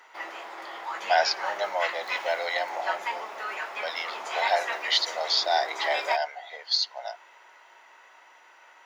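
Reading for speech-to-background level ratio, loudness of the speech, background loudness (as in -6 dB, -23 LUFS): 6.0 dB, -27.5 LUFS, -33.5 LUFS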